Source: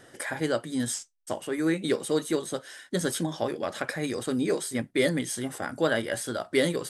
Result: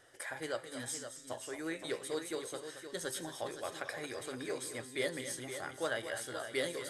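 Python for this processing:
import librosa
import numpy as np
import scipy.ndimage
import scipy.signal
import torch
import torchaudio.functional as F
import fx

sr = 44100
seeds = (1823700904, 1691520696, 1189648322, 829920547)

p1 = fx.peak_eq(x, sr, hz=200.0, db=-15.0, octaves=1.2)
p2 = fx.comb_fb(p1, sr, f0_hz=130.0, decay_s=1.9, harmonics='all', damping=0.0, mix_pct=60)
p3 = p2 + fx.echo_multitap(p2, sr, ms=(224, 518), db=(-10.5, -9.5), dry=0)
y = p3 * 10.0 ** (-1.0 / 20.0)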